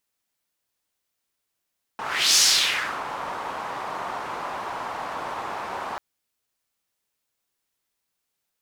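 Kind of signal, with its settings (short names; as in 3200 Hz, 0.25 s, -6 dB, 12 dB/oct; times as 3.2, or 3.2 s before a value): whoosh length 3.99 s, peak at 0.39, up 0.39 s, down 0.69 s, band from 960 Hz, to 5700 Hz, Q 2.3, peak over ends 15 dB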